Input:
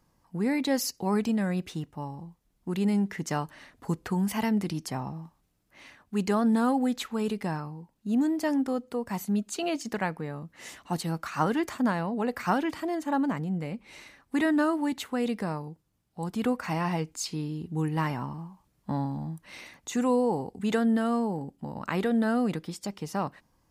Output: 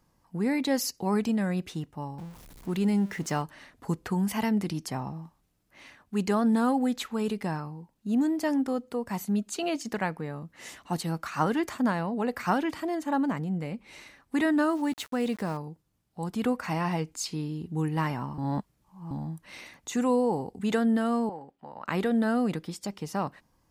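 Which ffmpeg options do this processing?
-filter_complex "[0:a]asettb=1/sr,asplit=3[a][b][c];[a]atrim=end=2.184[d];[b]atrim=start=2.18:end=3.42,asetpts=PTS-STARTPTS,afade=t=in:d=0.004:c=qsin,afade=t=out:st=1.236:d=0.004:c=qsin,aeval=exprs='val(0)+0.5*0.00631*sgn(val(0))':c=same[e];[c]atrim=start=3.416[f];[d][e]acrossfade=d=0.004:c1=hsin:c2=qsin[g];[g][f]acrossfade=d=0.004:c1=qsin:c2=hsin,asettb=1/sr,asplit=3[h][i][j];[h]atrim=end=14.694[k];[i]atrim=start=14.69:end=15.57,asetpts=PTS-STARTPTS,afade=t=in:d=0.004:c=qsin,afade=t=out:st=0.876:d=0.004:c=qsin,aeval=exprs='val(0)*gte(abs(val(0)),0.00631)':c=same[l];[j]atrim=start=15.566[m];[k][l]acrossfade=d=0.004:c1=hsin:c2=qsin[n];[n][m]acrossfade=d=0.004:c1=qsin:c2=hsin,asettb=1/sr,asplit=3[o][p][q];[o]atrim=end=21.294[r];[p]atrim=start=21.29:end=21.88,asetpts=PTS-STARTPTS,afade=t=in:d=0.004:c=qsin,afade=t=out:st=0.586:d=0.004:c=qsin,acrossover=split=480 3800:gain=0.158 1 0.158[s][t][u];[s][t][u]amix=inputs=3:normalize=0[v];[q]atrim=start=21.876[w];[r][v]acrossfade=d=0.004:c1=hsin:c2=qsin[x];[x][w]acrossfade=d=0.004:c1=qsin:c2=hsin,asplit=3[y][z][aa];[y]atrim=end=18.382[ab];[z]atrim=start=18.378:end=19.112,asetpts=PTS-STARTPTS,areverse[ac];[aa]atrim=start=19.108[ad];[ab][ac]acrossfade=d=0.004:c1=hsin:c2=hsin[ae];[ae][ad]acrossfade=d=0.004:c1=hsin:c2=hsin"

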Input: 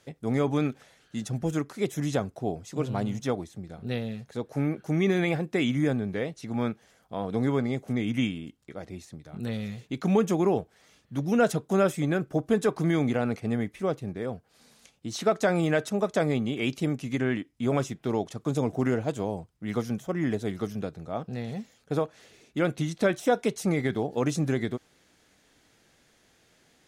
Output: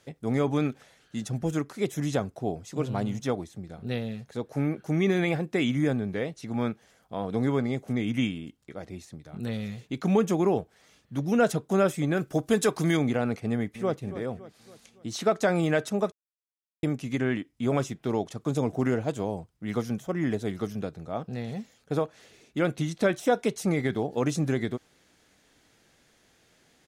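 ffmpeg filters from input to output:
-filter_complex "[0:a]asettb=1/sr,asplit=3[a][b][c];[a]atrim=end=12.174[d];[b]atrim=start=12.17:end=12.97,asetpts=PTS-STARTPTS,afade=t=in:d=0.004:c=qsin,afade=t=out:st=0.796:d=0.004:c=qsin,highshelf=f=2.5k:g=10.5[e];[c]atrim=start=12.966[f];[d][e]acrossfade=d=0.004:c1=hsin:c2=qsin[g];[g][f]acrossfade=d=0.004:c1=qsin:c2=hsin,asplit=2[h][i];[i]afade=t=in:st=13.47:d=0.01,afade=t=out:st=13.95:d=0.01,aecho=0:1:280|560|840|1120|1400:0.211349|0.105674|0.0528372|0.0264186|0.0132093[j];[h][j]amix=inputs=2:normalize=0,asplit=3[k][l][m];[k]atrim=end=16.12,asetpts=PTS-STARTPTS,afade=t=out:st=16.116:d=0.004:c=hsin[n];[l]atrim=start=16.12:end=16.83,asetpts=PTS-STARTPTS,volume=0[o];[m]atrim=start=16.83,asetpts=PTS-STARTPTS,afade=t=in:d=0.004:c=hsin[p];[n][o][p]concat=n=3:v=0:a=1"

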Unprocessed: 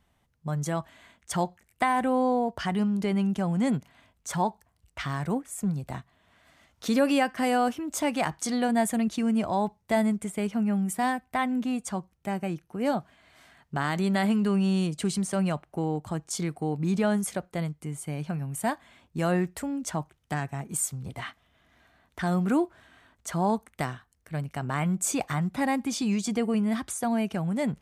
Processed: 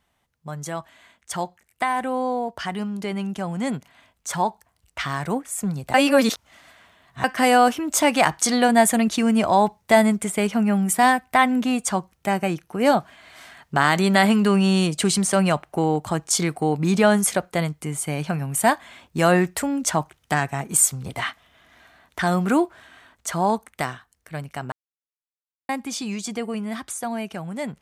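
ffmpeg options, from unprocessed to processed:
-filter_complex "[0:a]asplit=5[a][b][c][d][e];[a]atrim=end=5.942[f];[b]atrim=start=5.938:end=7.242,asetpts=PTS-STARTPTS,areverse[g];[c]atrim=start=7.238:end=24.72,asetpts=PTS-STARTPTS,afade=t=out:st=17.478:d=0.004:c=hsin[h];[d]atrim=start=24.72:end=25.69,asetpts=PTS-STARTPTS,volume=0[i];[e]atrim=start=25.69,asetpts=PTS-STARTPTS,afade=t=in:d=0.004:c=hsin[j];[f][g]acrossfade=d=0.004:c1=hsin:c2=hsin[k];[h][i][j]concat=n=3:v=0:a=1[l];[k][l]acrossfade=d=0.004:c1=hsin:c2=hsin,lowshelf=f=360:g=-8.5,dynaudnorm=f=350:g=31:m=10.5dB,volume=2.5dB"

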